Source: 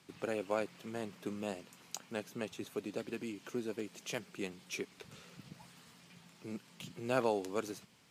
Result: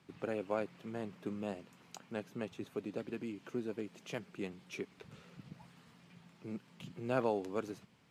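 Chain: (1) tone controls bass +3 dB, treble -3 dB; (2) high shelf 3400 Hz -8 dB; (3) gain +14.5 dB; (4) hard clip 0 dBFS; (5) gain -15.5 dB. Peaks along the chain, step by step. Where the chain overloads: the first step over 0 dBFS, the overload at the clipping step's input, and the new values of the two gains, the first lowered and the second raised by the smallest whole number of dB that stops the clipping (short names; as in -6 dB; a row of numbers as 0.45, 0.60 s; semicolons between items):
-17.5, -18.5, -4.0, -4.0, -19.5 dBFS; no overload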